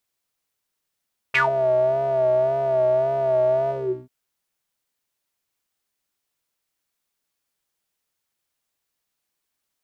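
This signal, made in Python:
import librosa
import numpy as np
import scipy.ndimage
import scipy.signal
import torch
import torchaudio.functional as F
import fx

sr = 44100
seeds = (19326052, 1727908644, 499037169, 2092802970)

y = fx.sub_patch_vibrato(sr, seeds[0], note=48, wave='square', wave2='saw', interval_st=12, detune_cents=16, level2_db=-16.5, sub_db=-15.0, noise_db=-30.0, kind='bandpass', cutoff_hz=240.0, q=11.0, env_oct=3.5, env_decay_s=0.14, env_sustain_pct=40, attack_ms=13.0, decay_s=0.14, sustain_db=-11, release_s=0.38, note_s=2.36, lfo_hz=1.8, vibrato_cents=60)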